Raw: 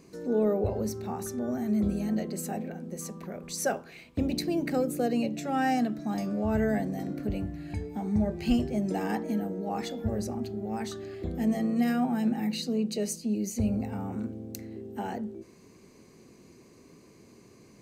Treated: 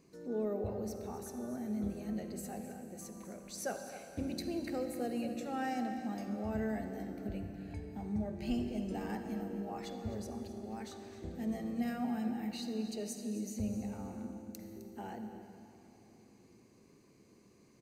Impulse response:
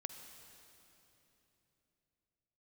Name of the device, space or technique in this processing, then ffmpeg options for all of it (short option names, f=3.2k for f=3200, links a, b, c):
cave: -filter_complex "[0:a]aecho=1:1:260:0.2[a];[1:a]atrim=start_sample=2205[b];[a][b]afir=irnorm=-1:irlink=0,volume=-6.5dB"